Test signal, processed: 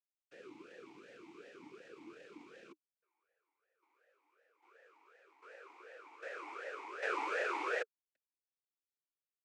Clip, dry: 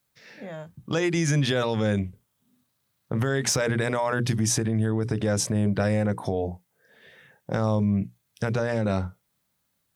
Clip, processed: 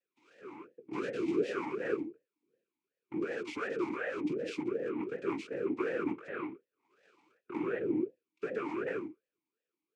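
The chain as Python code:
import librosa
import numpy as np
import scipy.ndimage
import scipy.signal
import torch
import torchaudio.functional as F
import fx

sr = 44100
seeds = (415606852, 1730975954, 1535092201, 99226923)

y = fx.noise_vocoder(x, sr, seeds[0], bands=3)
y = fx.vowel_sweep(y, sr, vowels='e-u', hz=2.7)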